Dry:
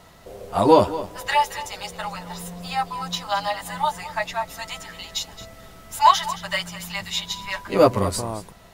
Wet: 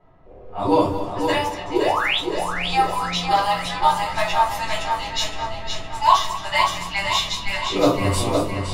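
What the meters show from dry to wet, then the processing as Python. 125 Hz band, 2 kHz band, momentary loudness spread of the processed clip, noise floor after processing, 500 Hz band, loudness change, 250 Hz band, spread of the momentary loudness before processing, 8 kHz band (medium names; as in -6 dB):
+3.0 dB, +5.0 dB, 6 LU, -39 dBFS, -0.5 dB, +2.0 dB, +2.5 dB, 17 LU, +1.5 dB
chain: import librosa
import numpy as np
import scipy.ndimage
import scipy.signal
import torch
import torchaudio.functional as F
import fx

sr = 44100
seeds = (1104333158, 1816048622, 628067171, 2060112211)

y = fx.spec_paint(x, sr, seeds[0], shape='rise', start_s=1.73, length_s=0.45, low_hz=310.0, high_hz=4100.0, level_db=-18.0)
y = fx.rider(y, sr, range_db=5, speed_s=0.5)
y = fx.echo_feedback(y, sr, ms=514, feedback_pct=56, wet_db=-5.5)
y = fx.room_shoebox(y, sr, seeds[1], volume_m3=190.0, walls='furnished', distance_m=3.9)
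y = fx.env_lowpass(y, sr, base_hz=1300.0, full_db=-9.5)
y = y * 10.0 ** (-8.0 / 20.0)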